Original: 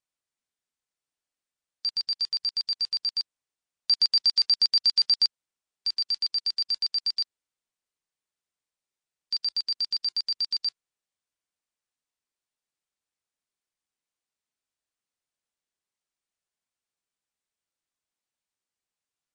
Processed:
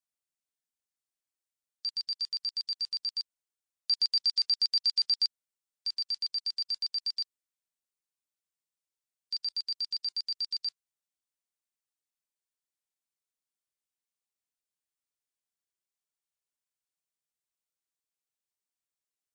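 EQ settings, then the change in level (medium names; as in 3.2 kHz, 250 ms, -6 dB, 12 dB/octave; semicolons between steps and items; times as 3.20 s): treble shelf 5.8 kHz +9.5 dB; -9.0 dB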